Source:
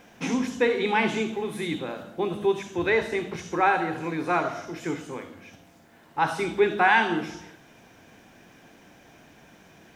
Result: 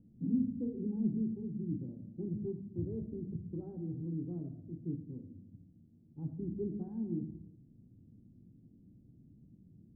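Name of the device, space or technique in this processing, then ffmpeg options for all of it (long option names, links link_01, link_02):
the neighbour's flat through the wall: -af "lowpass=frequency=250:width=0.5412,lowpass=frequency=250:width=1.3066,equalizer=frequency=110:width_type=o:width=0.43:gain=6.5,volume=-2dB"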